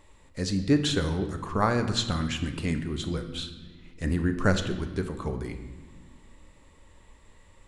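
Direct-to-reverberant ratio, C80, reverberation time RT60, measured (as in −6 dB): 6.5 dB, 11.0 dB, non-exponential decay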